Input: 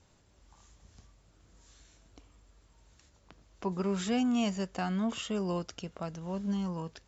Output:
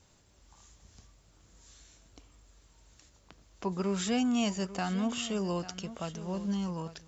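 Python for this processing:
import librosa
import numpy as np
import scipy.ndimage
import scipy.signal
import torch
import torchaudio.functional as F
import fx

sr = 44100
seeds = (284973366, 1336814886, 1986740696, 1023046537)

y = fx.high_shelf(x, sr, hz=3900.0, db=6.5)
y = y + 10.0 ** (-14.5 / 20.0) * np.pad(y, (int(846 * sr / 1000.0), 0))[:len(y)]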